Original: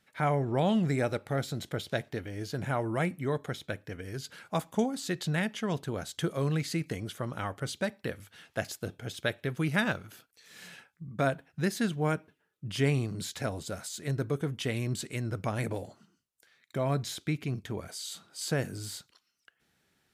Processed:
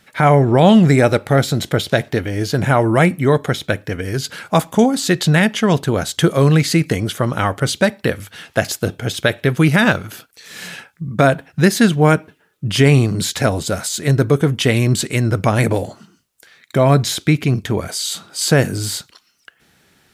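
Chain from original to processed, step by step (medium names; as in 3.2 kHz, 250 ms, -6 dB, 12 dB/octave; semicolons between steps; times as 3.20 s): loudness maximiser +18 dB; trim -1 dB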